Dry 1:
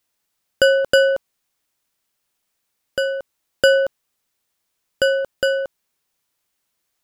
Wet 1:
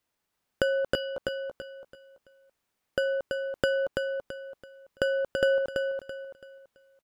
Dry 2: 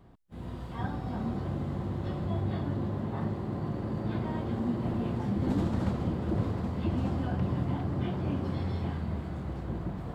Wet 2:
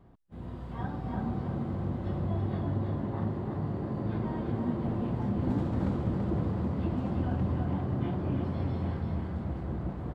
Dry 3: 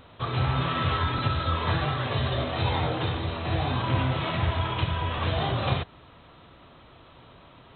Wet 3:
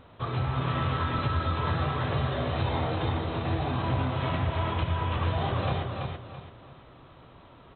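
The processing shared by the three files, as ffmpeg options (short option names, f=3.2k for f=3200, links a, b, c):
-filter_complex "[0:a]highshelf=f=2.8k:g=-9.5,acompressor=threshold=-23dB:ratio=6,asplit=2[a][b];[b]aecho=0:1:333|666|999|1332:0.596|0.191|0.061|0.0195[c];[a][c]amix=inputs=2:normalize=0,volume=-1dB"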